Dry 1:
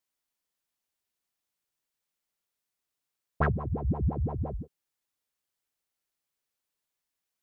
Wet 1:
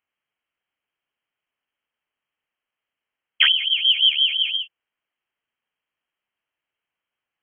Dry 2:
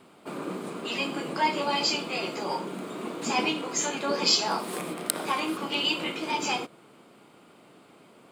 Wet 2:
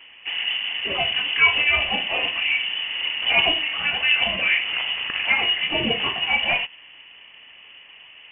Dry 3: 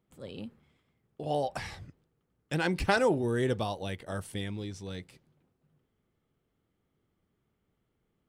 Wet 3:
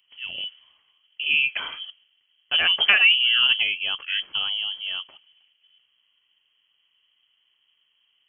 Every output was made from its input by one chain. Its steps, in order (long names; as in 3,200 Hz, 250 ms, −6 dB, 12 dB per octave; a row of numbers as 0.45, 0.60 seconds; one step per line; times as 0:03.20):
voice inversion scrambler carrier 3,200 Hz
spectral tilt +2 dB per octave
level +6 dB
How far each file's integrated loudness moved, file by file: +14.5, +8.0, +11.5 LU